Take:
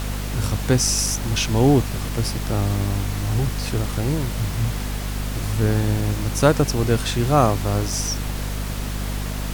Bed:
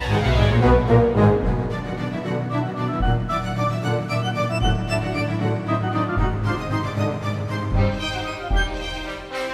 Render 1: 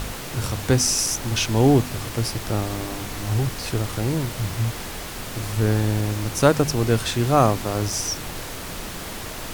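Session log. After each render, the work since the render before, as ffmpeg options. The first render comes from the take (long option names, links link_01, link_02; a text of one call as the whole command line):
ffmpeg -i in.wav -af "bandreject=frequency=50:width_type=h:width=4,bandreject=frequency=100:width_type=h:width=4,bandreject=frequency=150:width_type=h:width=4,bandreject=frequency=200:width_type=h:width=4,bandreject=frequency=250:width_type=h:width=4" out.wav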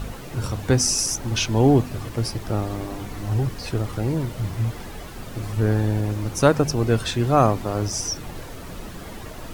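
ffmpeg -i in.wav -af "afftdn=noise_reduction=10:noise_floor=-33" out.wav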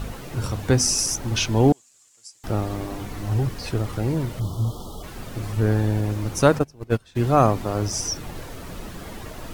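ffmpeg -i in.wav -filter_complex "[0:a]asettb=1/sr,asplit=3[link_01][link_02][link_03];[link_01]atrim=end=1.724[link_04];[link_02]atrim=start=1.72:end=2.44,asetpts=PTS-STARTPTS,afade=type=in:duration=0.004:curve=qsin,afade=type=out:start_time=0.716:duration=0.004:curve=qsin,bandpass=frequency=7300:width_type=q:width=6.3[link_05];[link_03]atrim=start=2.436[link_06];[link_04][link_05]acrossfade=duration=0.004:curve1=hsin:curve2=qsin[link_07];[link_07][link_06]acrossfade=duration=0.004:curve1=qsin:curve2=hsin,asplit=3[link_08][link_09][link_10];[link_08]afade=type=out:start_time=4.39:duration=0.02[link_11];[link_09]asuperstop=centerf=2000:order=20:qfactor=1.2,afade=type=in:start_time=4.39:duration=0.02,afade=type=out:start_time=5.02:duration=0.02[link_12];[link_10]afade=type=in:start_time=5.02:duration=0.02[link_13];[link_11][link_12][link_13]amix=inputs=3:normalize=0,asplit=3[link_14][link_15][link_16];[link_14]afade=type=out:start_time=6.58:duration=0.02[link_17];[link_15]agate=range=-25dB:threshold=-18dB:ratio=16:release=100:detection=peak,afade=type=in:start_time=6.58:duration=0.02,afade=type=out:start_time=7.15:duration=0.02[link_18];[link_16]afade=type=in:start_time=7.15:duration=0.02[link_19];[link_17][link_18][link_19]amix=inputs=3:normalize=0" out.wav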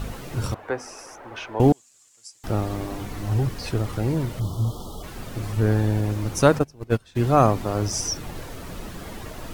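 ffmpeg -i in.wav -filter_complex "[0:a]asettb=1/sr,asplit=3[link_01][link_02][link_03];[link_01]atrim=end=0.544[link_04];[link_02]atrim=start=0.54:end=1.6,asetpts=PTS-STARTPTS,afade=type=in:duration=0.004:curve=qsin,afade=type=out:start_time=1.056:duration=0.004:curve=qsin,acrossover=split=420 2100:gain=0.0631 1 0.0708[link_05][link_06][link_07];[link_05][link_06][link_07]amix=inputs=3:normalize=0[link_08];[link_03]atrim=start=1.596[link_09];[link_04][link_08]acrossfade=duration=0.004:curve1=hsin:curve2=qsin[link_10];[link_10][link_09]acrossfade=duration=0.004:curve1=qsin:curve2=hsin" out.wav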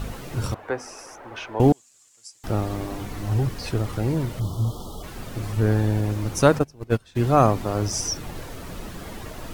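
ffmpeg -i in.wav -af anull out.wav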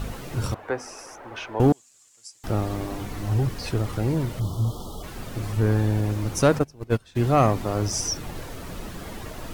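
ffmpeg -i in.wav -af "asoftclip=type=tanh:threshold=-9dB" out.wav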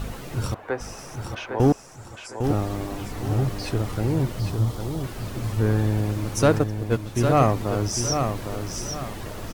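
ffmpeg -i in.wav -af "aecho=1:1:805|1610|2415|3220:0.473|0.156|0.0515|0.017" out.wav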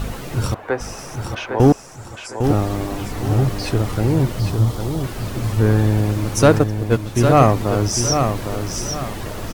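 ffmpeg -i in.wav -af "volume=6dB" out.wav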